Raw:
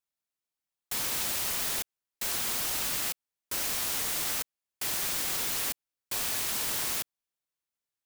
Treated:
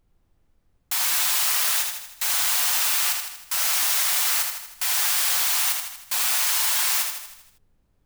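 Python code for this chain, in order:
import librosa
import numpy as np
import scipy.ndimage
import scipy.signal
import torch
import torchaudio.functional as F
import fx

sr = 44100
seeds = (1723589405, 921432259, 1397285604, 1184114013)

y = scipy.signal.sosfilt(scipy.signal.butter(4, 740.0, 'highpass', fs=sr, output='sos'), x)
y = y + 0.42 * np.pad(y, (int(6.8 * sr / 1000.0), 0))[:len(y)]
y = fx.leveller(y, sr, passes=1)
y = fx.dmg_noise_colour(y, sr, seeds[0], colour='brown', level_db=-69.0)
y = fx.echo_feedback(y, sr, ms=79, feedback_pct=54, wet_db=-5)
y = y * librosa.db_to_amplitude(4.0)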